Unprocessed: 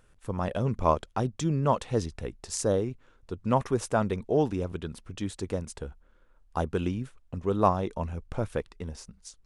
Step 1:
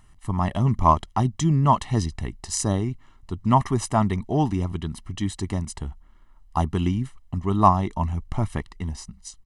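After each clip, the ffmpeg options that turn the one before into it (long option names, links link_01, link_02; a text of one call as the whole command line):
ffmpeg -i in.wav -af "aecho=1:1:1:0.9,volume=3.5dB" out.wav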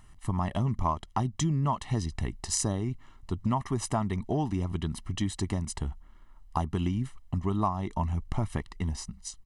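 ffmpeg -i in.wav -af "acompressor=threshold=-25dB:ratio=5" out.wav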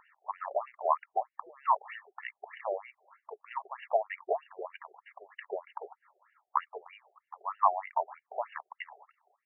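ffmpeg -i in.wav -af "afftfilt=real='re*between(b*sr/1024,540*pow(2100/540,0.5+0.5*sin(2*PI*3.2*pts/sr))/1.41,540*pow(2100/540,0.5+0.5*sin(2*PI*3.2*pts/sr))*1.41)':imag='im*between(b*sr/1024,540*pow(2100/540,0.5+0.5*sin(2*PI*3.2*pts/sr))/1.41,540*pow(2100/540,0.5+0.5*sin(2*PI*3.2*pts/sr))*1.41)':win_size=1024:overlap=0.75,volume=6.5dB" out.wav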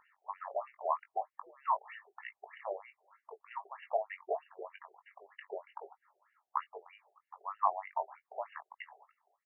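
ffmpeg -i in.wav -filter_complex "[0:a]asplit=2[link_01][link_02];[link_02]adelay=20,volume=-9dB[link_03];[link_01][link_03]amix=inputs=2:normalize=0,volume=-5.5dB" out.wav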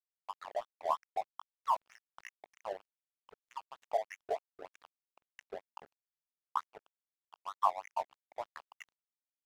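ffmpeg -i in.wav -af "aeval=exprs='sgn(val(0))*max(abs(val(0))-0.00531,0)':channel_layout=same,volume=1dB" out.wav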